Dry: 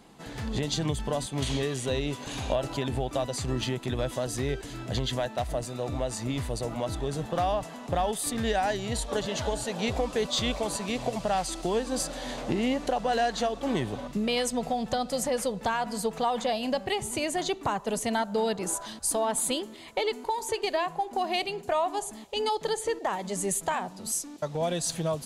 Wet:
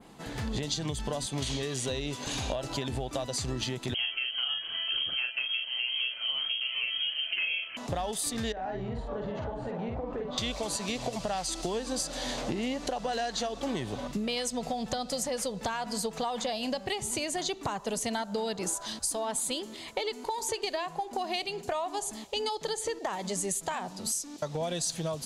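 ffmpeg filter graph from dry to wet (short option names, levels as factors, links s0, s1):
-filter_complex "[0:a]asettb=1/sr,asplit=3[s0][s1][s2];[s0]atrim=end=3.944[s3];[s1]atrim=start=3.94:end=7.77,asetpts=PTS-STARTPTS,afade=t=in:d=0.004:c=qsin,afade=t=out:st=3.826:d=0.004:c=qsin,asplit=2[s4][s5];[s5]adelay=39,volume=0.596[s6];[s4][s6]amix=inputs=2:normalize=0,atrim=end_sample=168903,lowpass=f=2800:t=q:w=0.5098,lowpass=f=2800:t=q:w=0.6013,lowpass=f=2800:t=q:w=0.9,lowpass=f=2800:t=q:w=2.563,afreqshift=-3300[s7];[s2]atrim=start=7.766[s8];[s3][s7]acrossfade=d=0.004:c1=hsin:c2=qsin[s9];[s9][s8]acrossfade=d=0.004:c1=qsin:c2=hsin,asettb=1/sr,asplit=3[s10][s11][s12];[s10]atrim=end=8.524[s13];[s11]atrim=start=8.52:end=10.38,asetpts=PTS-STARTPTS,afade=t=in:d=0.004:c=qsin,afade=t=out:st=1.856:d=0.004:c=qsin,lowpass=1300,acompressor=threshold=0.02:ratio=4:attack=3.2:release=140:knee=1:detection=peak,asplit=2[s14][s15];[s15]adelay=48,volume=0.668[s16];[s14][s16]amix=inputs=2:normalize=0,atrim=end_sample=82026[s17];[s12]atrim=start=10.376[s18];[s13][s17]acrossfade=d=0.004:c1=hsin:c2=qsin[s19];[s19][s18]acrossfade=d=0.004:c1=qsin:c2=hsin,adynamicequalizer=threshold=0.00501:dfrequency=5400:dqfactor=0.83:tfrequency=5400:tqfactor=0.83:attack=5:release=100:ratio=0.375:range=3.5:mode=boostabove:tftype=bell,acompressor=threshold=0.0282:ratio=5,volume=1.19"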